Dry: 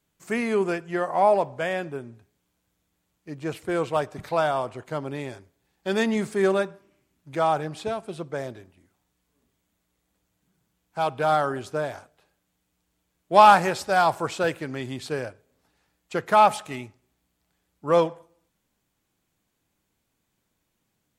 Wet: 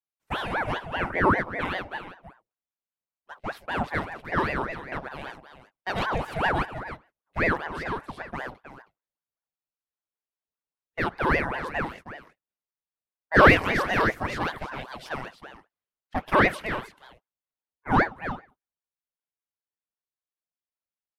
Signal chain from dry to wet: HPF 230 Hz; gate -40 dBFS, range -24 dB; phaser 1.3 Hz, delay 2.4 ms, feedback 29%; bell 7300 Hz -12 dB 0.78 oct; on a send: echo 0.317 s -11.5 dB; on the sum: ring modulator with a swept carrier 780 Hz, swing 70%, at 5.1 Hz

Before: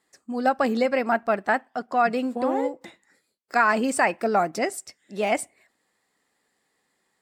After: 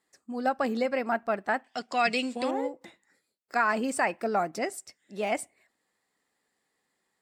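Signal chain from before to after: 1.64–2.51 band shelf 4300 Hz +15 dB 2.4 oct; gain -5.5 dB

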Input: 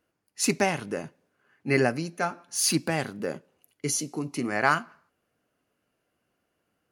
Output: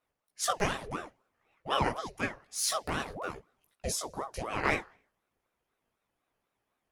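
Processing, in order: chorus voices 4, 1 Hz, delay 17 ms, depth 3 ms; ring modulator with a swept carrier 590 Hz, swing 65%, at 4 Hz

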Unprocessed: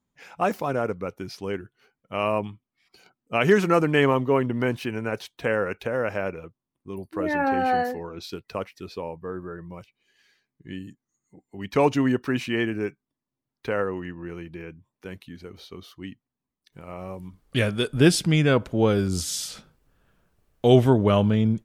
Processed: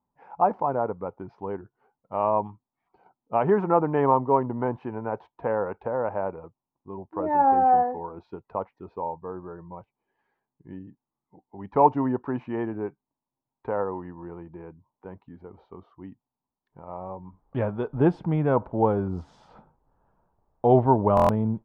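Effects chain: synth low-pass 900 Hz, resonance Q 4.9; stuck buffer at 21.15, samples 1024, times 5; gain -4.5 dB

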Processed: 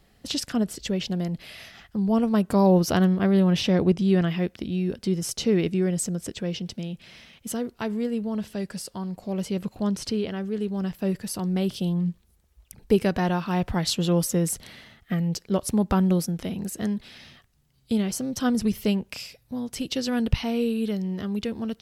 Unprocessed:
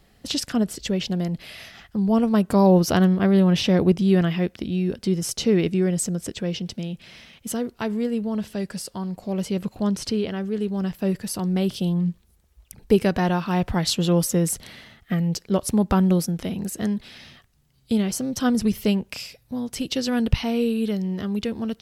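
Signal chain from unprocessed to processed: 3.7–4.28 LPF 10000 Hz 12 dB/oct; gain -2.5 dB

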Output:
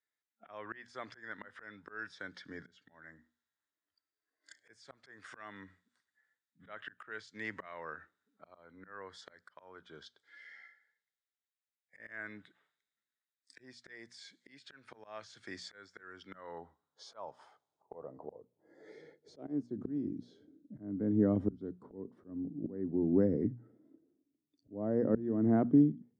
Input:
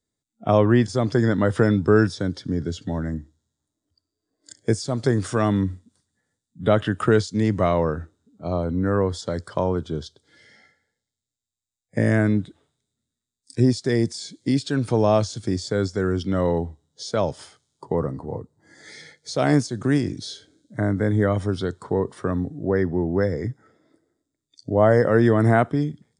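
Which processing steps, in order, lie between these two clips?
band-pass sweep 1800 Hz -> 260 Hz, 16.07–19.9; auto swell 0.607 s; notches 60/120/180/240 Hz; gain +2 dB

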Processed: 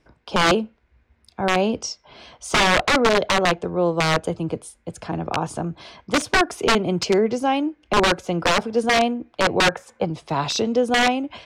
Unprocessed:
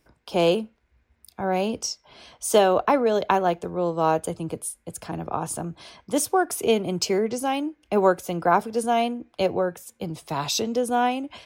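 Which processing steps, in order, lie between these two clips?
9.6–10.05 band shelf 1000 Hz +10 dB 2.4 oct; wrapped overs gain 14.5 dB; air absorption 97 m; gain +5 dB

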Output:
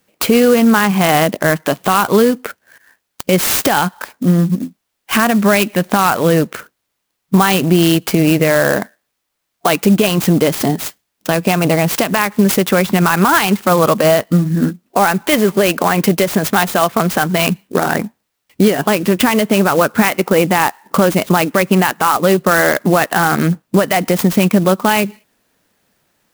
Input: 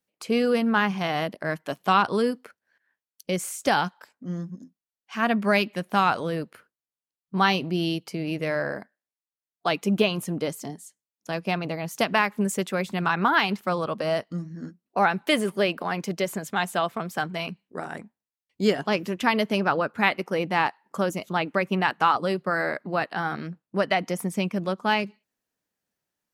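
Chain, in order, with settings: compressor 5:1, threshold -31 dBFS, peak gain reduction 15 dB; maximiser +24 dB; clock jitter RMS 0.039 ms; gain -1 dB

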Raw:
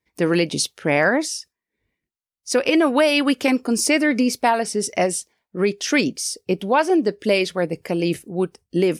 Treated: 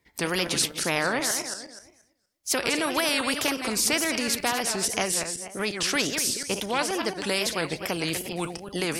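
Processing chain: regenerating reverse delay 0.119 s, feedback 42%, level -12 dB; wow and flutter 130 cents; spectral compressor 2:1; gain -6 dB

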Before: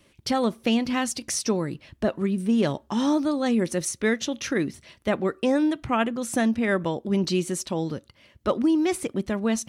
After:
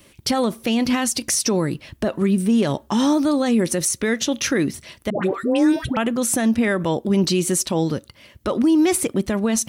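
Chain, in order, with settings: high shelf 9600 Hz +11.5 dB; limiter -18 dBFS, peak gain reduction 9 dB; 5.1–5.97 dispersion highs, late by 0.133 s, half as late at 840 Hz; gain +7.5 dB

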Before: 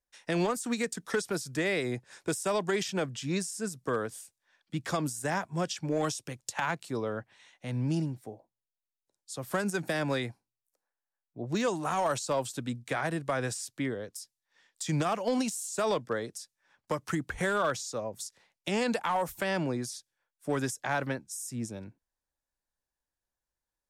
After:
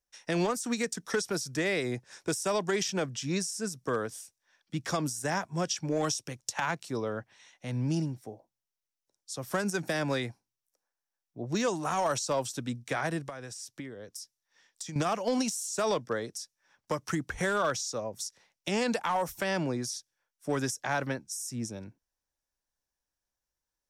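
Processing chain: bell 5700 Hz +8.5 dB 0.27 oct; 13.26–14.96 compressor 12:1, threshold -38 dBFS, peak gain reduction 13 dB

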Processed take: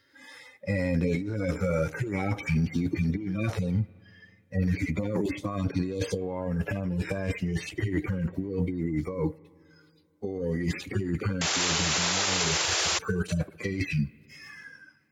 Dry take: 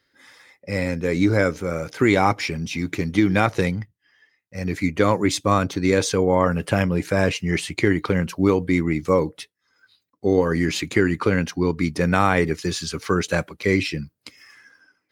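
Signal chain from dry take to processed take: median-filter separation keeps harmonic; negative-ratio compressor -28 dBFS, ratio -1; on a send at -22.5 dB: reverb RT60 2.7 s, pre-delay 44 ms; on the sum: painted sound noise, 11.41–12.99, 320–7500 Hz -22 dBFS; limiter -17 dBFS, peak gain reduction 8 dB

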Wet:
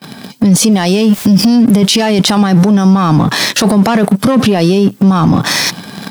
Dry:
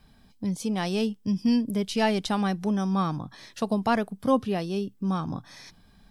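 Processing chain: sample leveller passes 2; gate with hold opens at -55 dBFS; HPF 140 Hz 24 dB/oct; 0.72–1.47 requantised 10-bit, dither triangular; AGC gain up to 3.5 dB; maximiser +34 dB; gain -1 dB

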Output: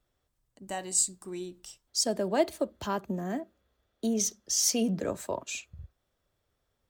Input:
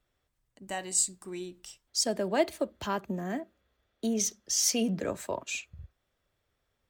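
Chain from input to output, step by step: bell 2200 Hz -5 dB 1.2 oct; gain +1 dB

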